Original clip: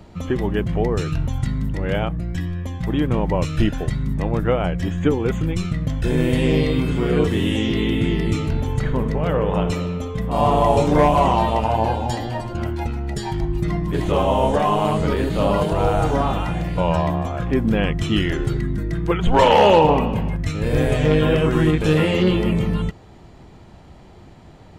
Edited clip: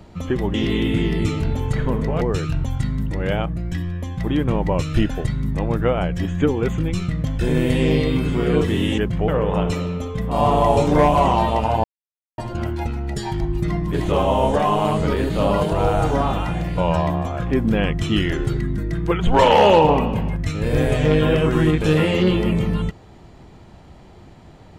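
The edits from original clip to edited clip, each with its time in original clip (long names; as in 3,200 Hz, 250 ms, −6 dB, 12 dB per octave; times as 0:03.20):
0:00.54–0:00.84: swap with 0:07.61–0:09.28
0:11.84–0:12.38: silence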